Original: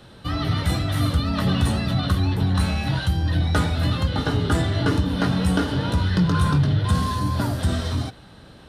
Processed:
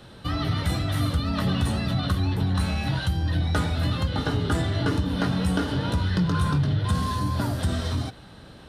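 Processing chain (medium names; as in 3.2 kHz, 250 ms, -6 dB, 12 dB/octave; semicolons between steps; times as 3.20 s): compression 1.5:1, threshold -26 dBFS, peak gain reduction 4.5 dB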